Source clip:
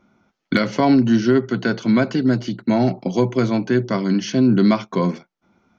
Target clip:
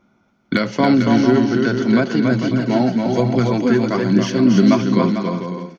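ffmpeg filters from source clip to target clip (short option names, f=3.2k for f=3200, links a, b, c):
-filter_complex "[0:a]aecho=1:1:280|448|548.8|609.3|645.6:0.631|0.398|0.251|0.158|0.1,asettb=1/sr,asplit=3[a][b][c];[a]atrim=end=2.514[d];[b]atrim=start=2.51:end=4.84,asetpts=PTS-STARTPTS,afade=t=in:d=0.004:c=qsin,afade=t=out:st=2.326:d=0.004:c=qsin,aphaser=in_gain=1:out_gain=1:delay=4.9:decay=0.41:speed=1.2:type=triangular[e];[c]atrim=start=4.836[f];[d][e]acrossfade=d=0.004:c1=hsin:c2=qsin[g];[g][f]acrossfade=d=0.004:c1=qsin:c2=hsin"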